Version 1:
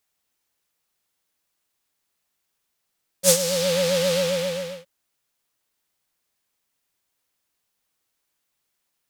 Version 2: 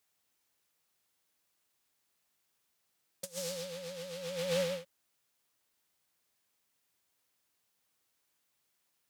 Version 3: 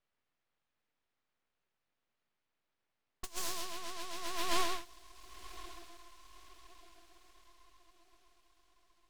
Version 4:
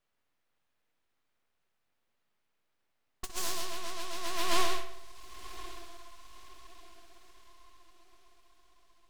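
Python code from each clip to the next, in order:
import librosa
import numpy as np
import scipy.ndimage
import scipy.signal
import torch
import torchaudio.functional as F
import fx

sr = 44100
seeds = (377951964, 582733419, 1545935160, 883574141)

y1 = scipy.signal.sosfilt(scipy.signal.butter(2, 55.0, 'highpass', fs=sr, output='sos'), x)
y1 = fx.over_compress(y1, sr, threshold_db=-28.0, ratio=-0.5)
y1 = F.gain(torch.from_numpy(y1), -8.5).numpy()
y2 = fx.env_lowpass(y1, sr, base_hz=1600.0, full_db=-38.5)
y2 = fx.echo_diffused(y2, sr, ms=1061, feedback_pct=44, wet_db=-15.5)
y2 = np.abs(y2)
y2 = F.gain(torch.from_numpy(y2), 3.5).numpy()
y3 = fx.echo_filtered(y2, sr, ms=62, feedback_pct=61, hz=4500.0, wet_db=-9.5)
y3 = F.gain(torch.from_numpy(y3), 3.5).numpy()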